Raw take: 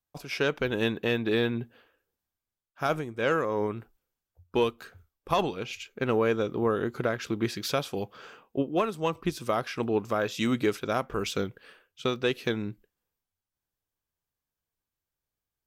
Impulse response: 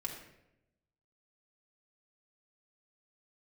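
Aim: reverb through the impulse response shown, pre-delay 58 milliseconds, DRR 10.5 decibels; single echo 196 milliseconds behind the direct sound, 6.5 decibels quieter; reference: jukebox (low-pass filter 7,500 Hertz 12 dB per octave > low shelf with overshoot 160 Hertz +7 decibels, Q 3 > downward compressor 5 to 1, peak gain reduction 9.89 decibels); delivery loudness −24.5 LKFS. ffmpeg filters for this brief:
-filter_complex "[0:a]aecho=1:1:196:0.473,asplit=2[link_01][link_02];[1:a]atrim=start_sample=2205,adelay=58[link_03];[link_02][link_03]afir=irnorm=-1:irlink=0,volume=-11dB[link_04];[link_01][link_04]amix=inputs=2:normalize=0,lowpass=7500,lowshelf=frequency=160:width_type=q:width=3:gain=7,acompressor=threshold=-27dB:ratio=5,volume=8dB"

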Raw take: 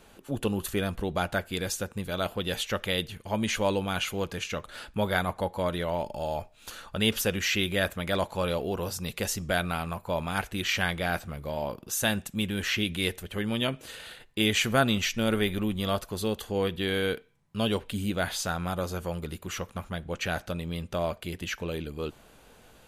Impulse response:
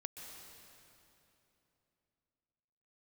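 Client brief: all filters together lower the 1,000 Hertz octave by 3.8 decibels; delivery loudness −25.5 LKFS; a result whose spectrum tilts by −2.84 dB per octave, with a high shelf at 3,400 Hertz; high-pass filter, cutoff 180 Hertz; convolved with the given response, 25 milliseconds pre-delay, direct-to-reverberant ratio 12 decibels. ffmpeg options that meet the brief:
-filter_complex "[0:a]highpass=180,equalizer=frequency=1000:width_type=o:gain=-6.5,highshelf=frequency=3400:gain=8,asplit=2[link_01][link_02];[1:a]atrim=start_sample=2205,adelay=25[link_03];[link_02][link_03]afir=irnorm=-1:irlink=0,volume=-9dB[link_04];[link_01][link_04]amix=inputs=2:normalize=0,volume=3dB"

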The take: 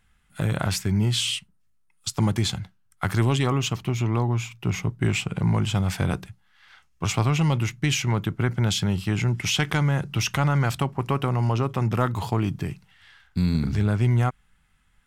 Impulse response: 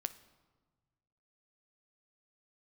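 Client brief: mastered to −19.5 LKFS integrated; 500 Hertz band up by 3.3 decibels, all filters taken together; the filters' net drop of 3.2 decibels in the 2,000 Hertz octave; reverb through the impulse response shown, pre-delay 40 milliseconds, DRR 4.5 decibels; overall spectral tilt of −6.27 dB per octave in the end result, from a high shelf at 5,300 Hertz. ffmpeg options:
-filter_complex "[0:a]equalizer=frequency=500:width_type=o:gain=4.5,equalizer=frequency=2000:width_type=o:gain=-3.5,highshelf=frequency=5300:gain=-6.5,asplit=2[link_01][link_02];[1:a]atrim=start_sample=2205,adelay=40[link_03];[link_02][link_03]afir=irnorm=-1:irlink=0,volume=-3.5dB[link_04];[link_01][link_04]amix=inputs=2:normalize=0,volume=3.5dB"

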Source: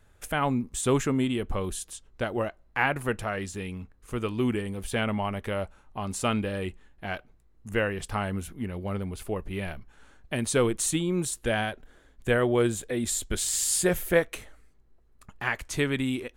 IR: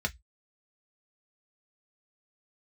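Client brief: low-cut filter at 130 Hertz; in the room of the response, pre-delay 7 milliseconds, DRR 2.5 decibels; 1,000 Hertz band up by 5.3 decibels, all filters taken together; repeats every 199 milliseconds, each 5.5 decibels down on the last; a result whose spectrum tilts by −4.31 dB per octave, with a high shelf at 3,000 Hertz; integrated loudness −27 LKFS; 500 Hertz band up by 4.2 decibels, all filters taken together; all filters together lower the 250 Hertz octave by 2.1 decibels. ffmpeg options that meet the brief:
-filter_complex "[0:a]highpass=130,equalizer=frequency=250:width_type=o:gain=-4.5,equalizer=frequency=500:width_type=o:gain=5,equalizer=frequency=1000:width_type=o:gain=6,highshelf=frequency=3000:gain=-3.5,aecho=1:1:199|398|597|796|995|1194|1393:0.531|0.281|0.149|0.079|0.0419|0.0222|0.0118,asplit=2[link_01][link_02];[1:a]atrim=start_sample=2205,adelay=7[link_03];[link_02][link_03]afir=irnorm=-1:irlink=0,volume=-8.5dB[link_04];[link_01][link_04]amix=inputs=2:normalize=0,volume=-2.5dB"

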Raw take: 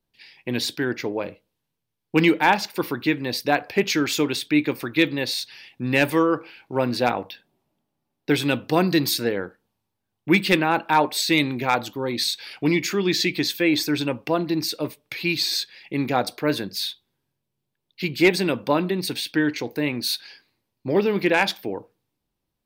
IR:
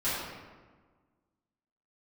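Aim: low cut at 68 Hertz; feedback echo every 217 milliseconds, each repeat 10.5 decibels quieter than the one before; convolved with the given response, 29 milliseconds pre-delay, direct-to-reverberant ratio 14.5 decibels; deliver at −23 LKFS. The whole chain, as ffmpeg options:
-filter_complex "[0:a]highpass=68,aecho=1:1:217|434|651:0.299|0.0896|0.0269,asplit=2[link_01][link_02];[1:a]atrim=start_sample=2205,adelay=29[link_03];[link_02][link_03]afir=irnorm=-1:irlink=0,volume=-24dB[link_04];[link_01][link_04]amix=inputs=2:normalize=0,volume=-0.5dB"

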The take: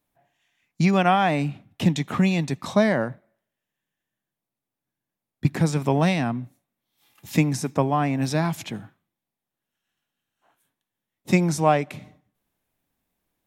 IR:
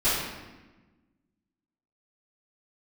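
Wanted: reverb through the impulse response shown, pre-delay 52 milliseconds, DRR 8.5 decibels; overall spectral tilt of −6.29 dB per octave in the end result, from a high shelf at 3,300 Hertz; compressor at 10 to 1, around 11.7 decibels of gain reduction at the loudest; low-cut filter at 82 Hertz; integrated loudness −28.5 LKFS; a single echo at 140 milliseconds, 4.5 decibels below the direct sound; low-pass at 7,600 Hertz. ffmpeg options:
-filter_complex "[0:a]highpass=82,lowpass=7600,highshelf=frequency=3300:gain=-6,acompressor=threshold=-26dB:ratio=10,aecho=1:1:140:0.596,asplit=2[link_01][link_02];[1:a]atrim=start_sample=2205,adelay=52[link_03];[link_02][link_03]afir=irnorm=-1:irlink=0,volume=-22.5dB[link_04];[link_01][link_04]amix=inputs=2:normalize=0,volume=2dB"

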